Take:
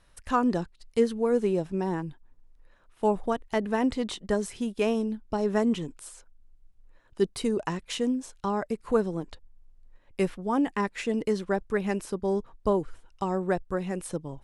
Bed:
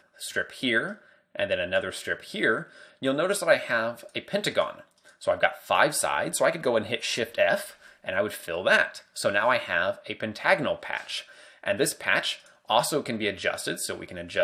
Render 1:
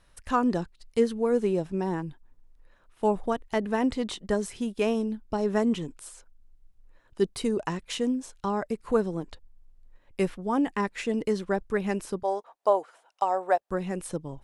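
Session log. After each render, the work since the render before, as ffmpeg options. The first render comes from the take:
-filter_complex "[0:a]asettb=1/sr,asplit=3[a][b][c];[a]atrim=end=12.234[d];[b]atrim=start=12.23:end=13.71,asetpts=PTS-STARTPTS,afade=t=in:d=0.004:c=qsin,afade=t=out:st=1.476:d=0.004:c=qsin,highpass=f=680:t=q:w=3.1[e];[c]atrim=start=13.706[f];[d][e]acrossfade=d=0.004:c1=hsin:c2=qsin[g];[g][f]acrossfade=d=0.004:c1=qsin:c2=hsin"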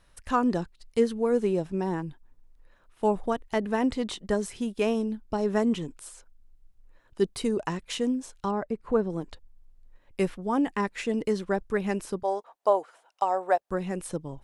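-filter_complex "[0:a]asettb=1/sr,asplit=3[a][b][c];[a]atrim=end=8.514[d];[b]atrim=start=8.51:end=9.1,asetpts=PTS-STARTPTS,afade=t=in:d=0.004:c=qsin,afade=t=out:st=0.586:d=0.004:c=qsin,lowpass=f=1.5k:p=1[e];[c]atrim=start=9.096[f];[d][e]acrossfade=d=0.004:c1=hsin:c2=qsin[g];[g][f]acrossfade=d=0.004:c1=qsin:c2=hsin"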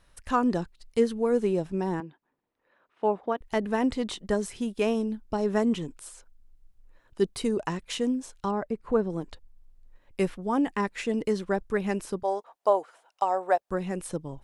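-filter_complex "[0:a]asettb=1/sr,asplit=3[a][b][c];[a]atrim=end=2.004[d];[b]atrim=start=2:end=3.41,asetpts=PTS-STARTPTS,afade=t=in:d=0.004:c=qsin,afade=t=out:st=1.406:d=0.004:c=qsin,highpass=270,lowpass=2.9k[e];[c]atrim=start=3.406[f];[d][e]acrossfade=d=0.004:c1=hsin:c2=qsin[g];[g][f]acrossfade=d=0.004:c1=qsin:c2=hsin"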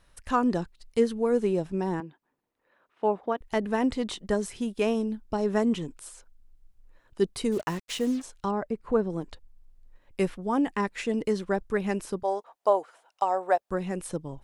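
-filter_complex "[0:a]asplit=3[a][b][c];[a]afade=t=out:st=7.51:d=0.02[d];[b]acrusher=bits=6:mix=0:aa=0.5,afade=t=in:st=7.51:d=0.02,afade=t=out:st=8.21:d=0.02[e];[c]afade=t=in:st=8.21:d=0.02[f];[d][e][f]amix=inputs=3:normalize=0"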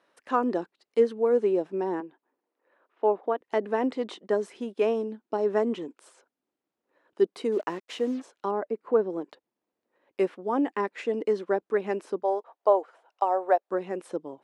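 -af "highpass=f=330:w=0.5412,highpass=f=330:w=1.3066,aemphasis=mode=reproduction:type=riaa"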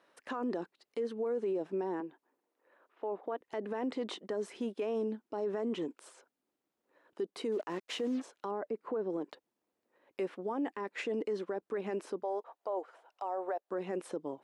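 -af "acompressor=threshold=-28dB:ratio=2,alimiter=level_in=3.5dB:limit=-24dB:level=0:latency=1:release=25,volume=-3.5dB"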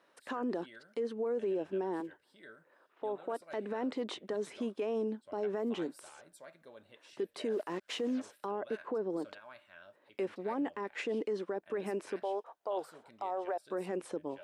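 -filter_complex "[1:a]volume=-30dB[a];[0:a][a]amix=inputs=2:normalize=0"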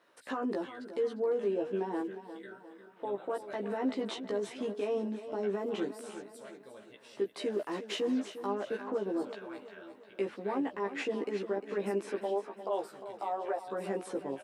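-filter_complex "[0:a]asplit=2[a][b];[b]adelay=15,volume=-2dB[c];[a][c]amix=inputs=2:normalize=0,aecho=1:1:353|706|1059|1412|1765:0.251|0.123|0.0603|0.0296|0.0145"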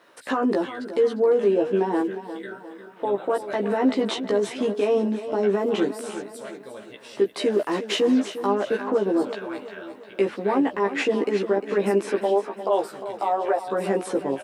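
-af "volume=11.5dB"

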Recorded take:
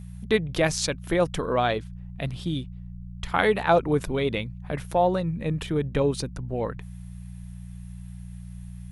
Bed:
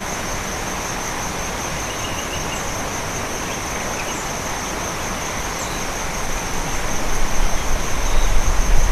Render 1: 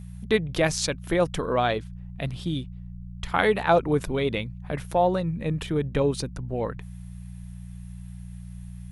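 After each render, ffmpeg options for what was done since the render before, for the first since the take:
-af anull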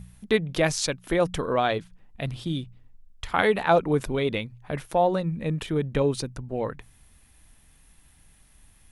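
-af "bandreject=f=60:t=h:w=4,bandreject=f=120:t=h:w=4,bandreject=f=180:t=h:w=4"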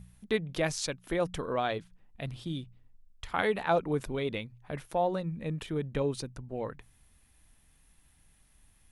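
-af "volume=-7dB"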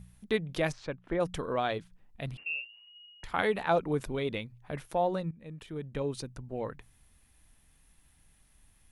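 -filter_complex "[0:a]asplit=3[a][b][c];[a]afade=t=out:st=0.71:d=0.02[d];[b]lowpass=1.8k,afade=t=in:st=0.71:d=0.02,afade=t=out:st=1.19:d=0.02[e];[c]afade=t=in:st=1.19:d=0.02[f];[d][e][f]amix=inputs=3:normalize=0,asettb=1/sr,asplit=3[g][h][i];[g]atrim=end=2.374[j];[h]atrim=start=2.37:end=3.24,asetpts=PTS-STARTPTS,afade=t=in:d=0.004:c=qsin,afade=t=out:st=0.866:d=0.004:c=qsin,lowpass=f=2.5k:t=q:w=0.5098,lowpass=f=2.5k:t=q:w=0.6013,lowpass=f=2.5k:t=q:w=0.9,lowpass=f=2.5k:t=q:w=2.563,afreqshift=-2900[k];[i]atrim=start=3.236[l];[j][k]acrossfade=d=0.004:c1=hsin:c2=qsin[m];[m][l]acrossfade=d=0.004:c1=qsin:c2=hsin,asplit=2[n][o];[n]atrim=end=5.31,asetpts=PTS-STARTPTS,afade=t=out:st=5.306:d=0.004:c=hsin:silence=0.16788[p];[o]atrim=start=5.31,asetpts=PTS-STARTPTS,afade=t=in:d=1.13:silence=0.16788[q];[p][q]concat=n=2:v=0:a=1"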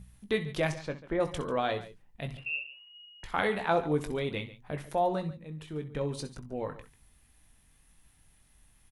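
-filter_complex "[0:a]asplit=2[a][b];[b]adelay=20,volume=-9dB[c];[a][c]amix=inputs=2:normalize=0,aecho=1:1:64|65|142:0.2|0.119|0.15"

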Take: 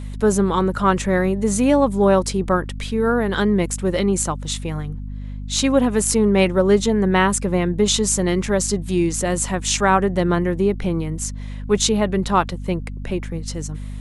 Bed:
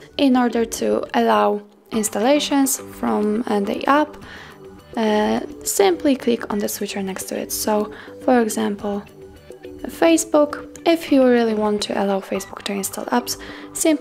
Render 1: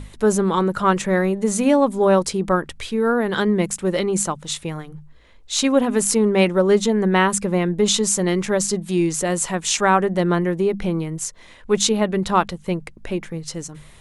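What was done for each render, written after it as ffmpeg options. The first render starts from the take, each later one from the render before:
-af "bandreject=f=50:t=h:w=6,bandreject=f=100:t=h:w=6,bandreject=f=150:t=h:w=6,bandreject=f=200:t=h:w=6,bandreject=f=250:t=h:w=6"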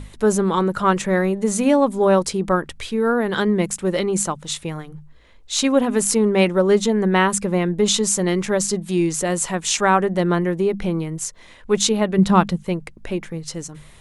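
-filter_complex "[0:a]asettb=1/sr,asplit=3[a][b][c];[a]atrim=end=12.184[d];[b]atrim=start=12.18:end=12.63,asetpts=PTS-STARTPTS,afade=t=in:d=0.004:c=qsin,afade=t=out:st=0.446:d=0.004:c=qsin,equalizer=f=190:t=o:w=1.1:g=10[e];[c]atrim=start=12.626[f];[d][e]acrossfade=d=0.004:c1=hsin:c2=qsin[g];[g][f]acrossfade=d=0.004:c1=qsin:c2=hsin"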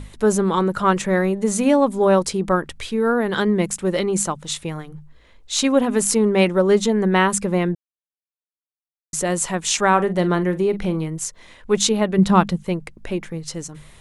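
-filter_complex "[0:a]asettb=1/sr,asplit=3[a][b][c];[a]atrim=end=9.884[d];[b]atrim=start=9.88:end=11.08,asetpts=PTS-STARTPTS,afade=t=in:d=0.004:c=qsin,afade=t=out:st=1.196:d=0.004:c=qsin,asplit=2[e][f];[f]adelay=44,volume=-13.5dB[g];[e][g]amix=inputs=2:normalize=0,atrim=end_sample=52920[h];[c]atrim=start=11.076[i];[d][h]acrossfade=d=0.004:c1=hsin:c2=qsin[j];[j][i]acrossfade=d=0.004:c1=qsin:c2=hsin,asplit=3[k][l][m];[k]atrim=end=7.75,asetpts=PTS-STARTPTS,afade=t=out:st=7.746:d=0.004:c=hsin[n];[l]atrim=start=7.75:end=9.13,asetpts=PTS-STARTPTS,volume=0[o];[m]atrim=start=9.13,asetpts=PTS-STARTPTS,afade=t=in:d=0.004:c=hsin[p];[n][o][p]concat=n=3:v=0:a=1"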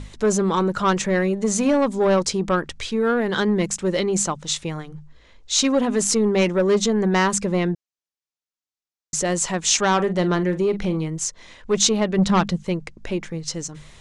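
-af "asoftclip=type=tanh:threshold=-11.5dB,lowpass=f=6.4k:t=q:w=1.7"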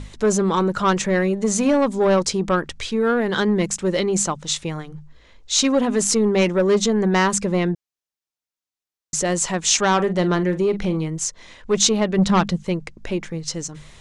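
-af "volume=1dB"

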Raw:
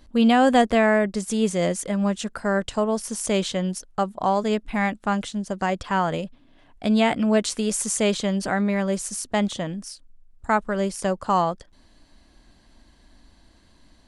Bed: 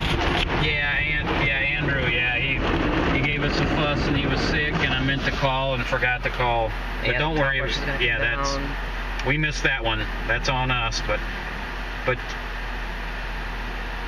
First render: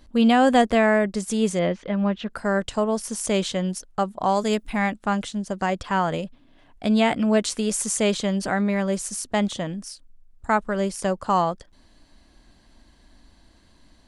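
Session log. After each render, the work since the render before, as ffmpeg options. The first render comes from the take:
-filter_complex "[0:a]asettb=1/sr,asplit=3[a][b][c];[a]atrim=end=1.594[d];[b]atrim=start=1.59:end=2.3,asetpts=PTS-STARTPTS,afade=t=in:d=0.004:c=qsin,afade=t=out:st=0.706:d=0.004:c=qsin,lowpass=f=3.6k:w=0.5412,lowpass=f=3.6k:w=1.3066[e];[c]atrim=start=2.296[f];[d][e]acrossfade=d=0.004:c1=hsin:c2=qsin[g];[g][f]acrossfade=d=0.004:c1=qsin:c2=hsin,asettb=1/sr,asplit=3[h][i][j];[h]atrim=end=4.294[k];[i]atrim=start=4.29:end=4.73,asetpts=PTS-STARTPTS,afade=t=in:d=0.004:c=qsin,afade=t=out:st=0.436:d=0.004:c=qsin,aemphasis=mode=production:type=50kf[l];[j]atrim=start=4.726[m];[k][l]acrossfade=d=0.004:c1=hsin:c2=qsin[n];[n][m]acrossfade=d=0.004:c1=qsin:c2=hsin"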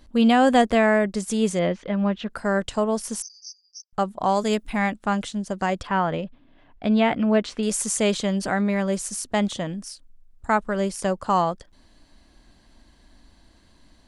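-filter_complex "[0:a]asettb=1/sr,asplit=3[a][b][c];[a]atrim=end=3.224[d];[b]atrim=start=3.22:end=3.93,asetpts=PTS-STARTPTS,afade=t=in:d=0.004:c=qsin,afade=t=out:st=0.706:d=0.004:c=qsin,asuperpass=centerf=5400:order=20:qfactor=3.3[e];[c]atrim=start=3.926[f];[d][e]acrossfade=d=0.004:c1=hsin:c2=qsin[g];[g][f]acrossfade=d=0.004:c1=qsin:c2=hsin,asettb=1/sr,asplit=3[h][i][j];[h]atrim=end=5.874[k];[i]atrim=start=5.87:end=7.63,asetpts=PTS-STARTPTS,afade=t=in:d=0.004:c=qsin,afade=t=out:st=1.756:d=0.004:c=qsin,lowpass=3.2k[l];[j]atrim=start=7.626[m];[k][l]acrossfade=d=0.004:c1=hsin:c2=qsin[n];[n][m]acrossfade=d=0.004:c1=qsin:c2=hsin"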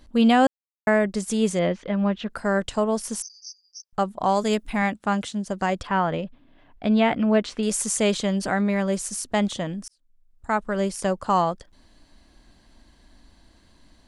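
-filter_complex "[0:a]asettb=1/sr,asplit=3[a][b][c];[a]atrim=end=4.824[d];[b]atrim=start=4.82:end=5.45,asetpts=PTS-STARTPTS,afade=t=in:d=0.004:c=qsin,afade=t=out:st=0.626:d=0.004:c=qsin,highpass=58[e];[c]atrim=start=5.446[f];[d][e]acrossfade=d=0.004:c1=hsin:c2=qsin[g];[g][f]acrossfade=d=0.004:c1=qsin:c2=hsin,asplit=4[h][i][j][k];[h]atrim=end=0.47,asetpts=PTS-STARTPTS,afade=t=out:st=0.466:d=0.004:c=hsin[l];[i]atrim=start=0.47:end=0.87,asetpts=PTS-STARTPTS,volume=0[m];[j]atrim=start=0.87:end=9.88,asetpts=PTS-STARTPTS,afade=t=in:d=0.004:c=hsin,afade=t=out:st=9.006:d=0.004:c=hsin[n];[k]atrim=start=9.88,asetpts=PTS-STARTPTS,afade=t=in:d=0.91[o];[l][m][n][o]concat=n=4:v=0:a=1"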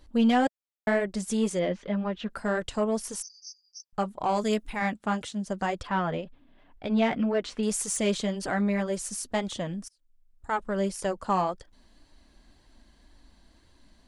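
-af "asoftclip=type=tanh:threshold=-11.5dB,flanger=delay=2.1:depth=3:regen=-43:speed=1.9:shape=sinusoidal"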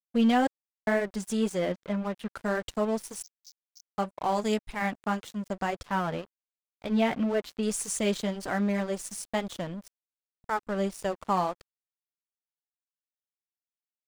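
-af "aeval=exprs='sgn(val(0))*max(abs(val(0))-0.00891,0)':c=same"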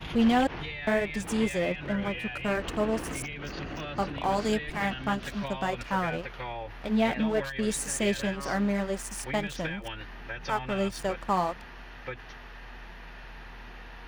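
-filter_complex "[1:a]volume=-15dB[a];[0:a][a]amix=inputs=2:normalize=0"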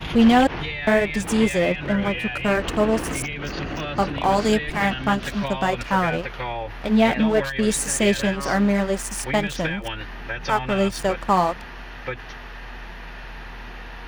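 -af "volume=8dB"

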